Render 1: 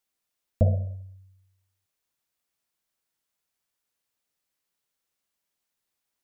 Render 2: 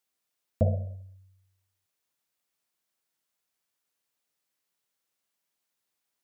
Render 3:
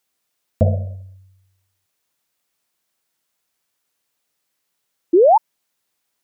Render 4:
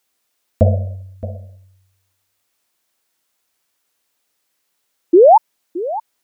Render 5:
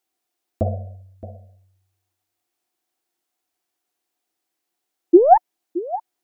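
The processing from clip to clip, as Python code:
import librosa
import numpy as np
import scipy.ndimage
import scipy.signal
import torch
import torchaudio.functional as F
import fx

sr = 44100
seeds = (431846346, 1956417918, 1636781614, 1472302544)

y1 = fx.highpass(x, sr, hz=120.0, slope=6)
y2 = fx.spec_paint(y1, sr, seeds[0], shape='rise', start_s=5.13, length_s=0.25, low_hz=320.0, high_hz=950.0, level_db=-19.0)
y2 = y2 * 10.0 ** (8.5 / 20.0)
y3 = fx.peak_eq(y2, sr, hz=150.0, db=-13.0, octaves=0.33)
y3 = y3 + 10.0 ** (-15.0 / 20.0) * np.pad(y3, (int(620 * sr / 1000.0), 0))[:len(y3)]
y3 = y3 * 10.0 ** (4.0 / 20.0)
y4 = fx.tracing_dist(y3, sr, depth_ms=0.029)
y4 = fx.small_body(y4, sr, hz=(340.0, 730.0), ring_ms=45, db=13)
y4 = y4 * 10.0 ** (-10.5 / 20.0)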